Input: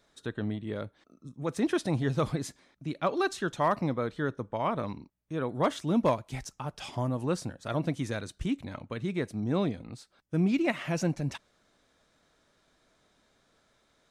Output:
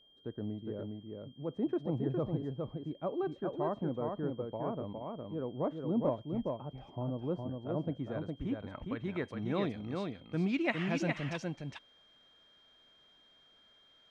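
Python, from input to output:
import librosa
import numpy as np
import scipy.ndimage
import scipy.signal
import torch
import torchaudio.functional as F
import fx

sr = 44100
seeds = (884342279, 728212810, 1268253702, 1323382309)

y = fx.high_shelf(x, sr, hz=4500.0, db=11.5)
y = fx.filter_sweep_lowpass(y, sr, from_hz=570.0, to_hz=2900.0, start_s=7.64, end_s=9.6, q=0.81)
y = fx.low_shelf(y, sr, hz=320.0, db=-4.0)
y = y + 10.0 ** (-4.0 / 20.0) * np.pad(y, (int(411 * sr / 1000.0), 0))[:len(y)]
y = y + 10.0 ** (-59.0 / 20.0) * np.sin(2.0 * np.pi * 3200.0 * np.arange(len(y)) / sr)
y = y * librosa.db_to_amplitude(-3.5)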